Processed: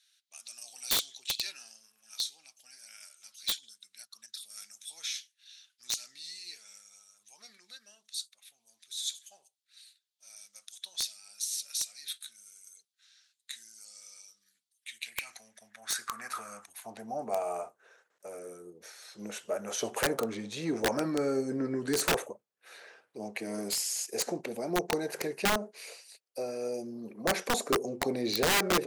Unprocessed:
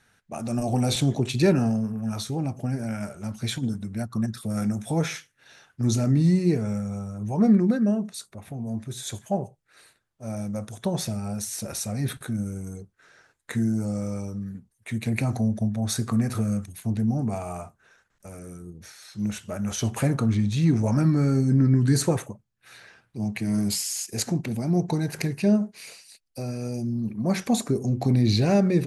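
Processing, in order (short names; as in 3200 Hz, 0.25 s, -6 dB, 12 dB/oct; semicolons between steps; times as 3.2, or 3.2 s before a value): high-pass sweep 3800 Hz -> 470 Hz, 14.67–17.56; wrapped overs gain 16.5 dB; gain -3.5 dB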